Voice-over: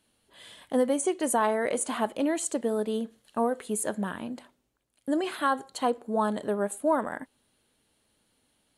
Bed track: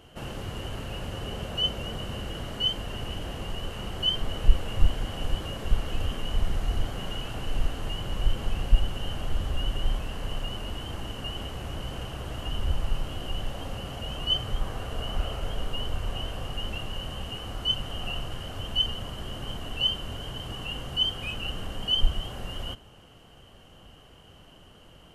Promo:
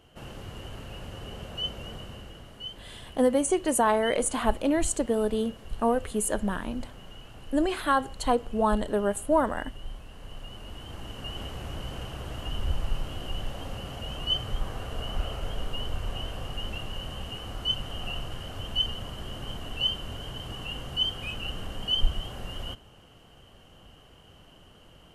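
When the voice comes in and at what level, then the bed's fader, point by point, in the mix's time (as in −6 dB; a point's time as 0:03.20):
2.45 s, +2.0 dB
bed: 0:01.93 −5.5 dB
0:02.52 −12.5 dB
0:10.05 −12.5 dB
0:11.42 −1.5 dB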